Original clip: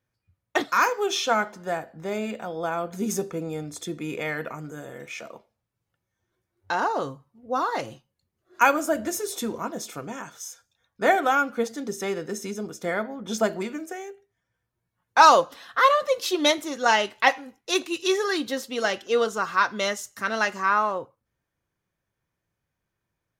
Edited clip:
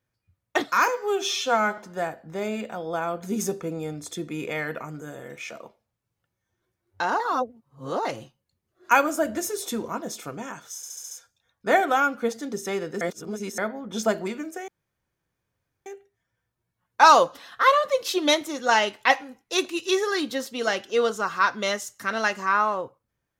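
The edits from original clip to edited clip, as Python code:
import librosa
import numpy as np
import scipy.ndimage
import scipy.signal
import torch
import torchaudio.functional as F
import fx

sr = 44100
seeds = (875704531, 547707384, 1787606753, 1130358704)

y = fx.edit(x, sr, fx.stretch_span(start_s=0.88, length_s=0.6, factor=1.5),
    fx.reverse_span(start_s=6.9, length_s=0.85),
    fx.stutter(start_s=10.46, slice_s=0.07, count=6),
    fx.reverse_span(start_s=12.36, length_s=0.57),
    fx.insert_room_tone(at_s=14.03, length_s=1.18), tone=tone)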